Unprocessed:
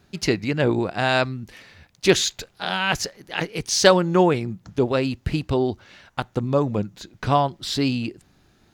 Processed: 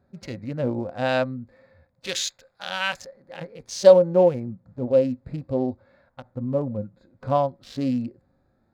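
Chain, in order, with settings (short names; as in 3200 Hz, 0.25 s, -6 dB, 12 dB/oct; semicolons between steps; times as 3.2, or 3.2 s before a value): Wiener smoothing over 15 samples; 2.07–3.02 tilt shelf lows -8 dB, about 920 Hz; harmonic-percussive split percussive -13 dB; bell 250 Hz -11.5 dB 0.94 oct; small resonant body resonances 250/530 Hz, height 18 dB, ringing for 80 ms; gain -4 dB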